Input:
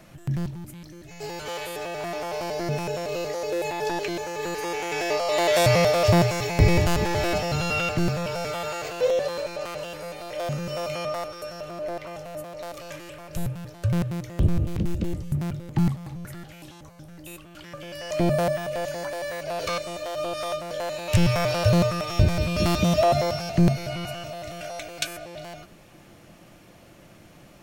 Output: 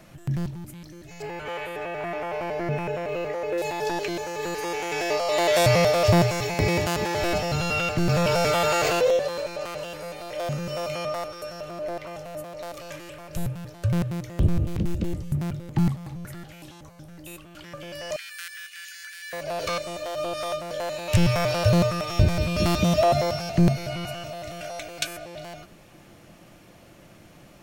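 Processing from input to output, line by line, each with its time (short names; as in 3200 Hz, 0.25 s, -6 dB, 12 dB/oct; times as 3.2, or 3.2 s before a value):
1.22–3.58 resonant high shelf 3300 Hz -11.5 dB, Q 1.5
6.54–7.22 HPF 220 Hz 6 dB/oct
8.09–9.17 fast leveller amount 70%
18.16–19.33 Chebyshev high-pass 1500 Hz, order 5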